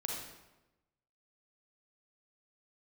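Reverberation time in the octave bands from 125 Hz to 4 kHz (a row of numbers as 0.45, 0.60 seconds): 1.2, 1.1, 1.1, 1.0, 0.90, 0.75 seconds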